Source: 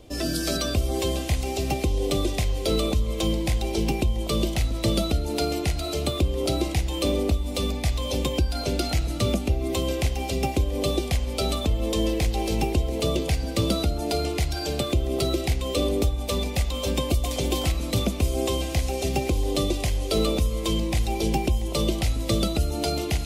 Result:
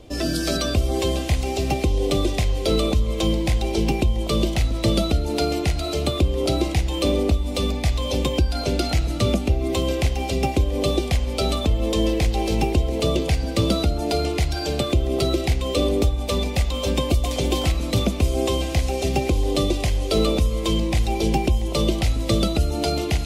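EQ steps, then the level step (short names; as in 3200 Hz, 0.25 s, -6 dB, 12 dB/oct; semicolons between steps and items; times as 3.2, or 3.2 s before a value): high shelf 9000 Hz -8 dB; +3.5 dB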